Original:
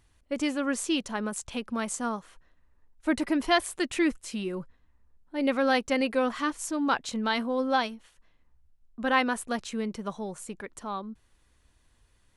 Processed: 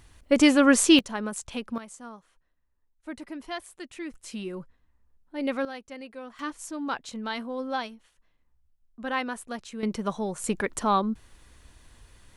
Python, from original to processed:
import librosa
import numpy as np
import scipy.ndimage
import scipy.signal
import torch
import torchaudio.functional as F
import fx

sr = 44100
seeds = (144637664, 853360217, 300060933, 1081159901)

y = fx.gain(x, sr, db=fx.steps((0.0, 10.5), (0.99, 0.0), (1.78, -12.0), (4.14, -2.5), (5.65, -15.0), (6.39, -5.0), (9.83, 5.0), (10.44, 11.5)))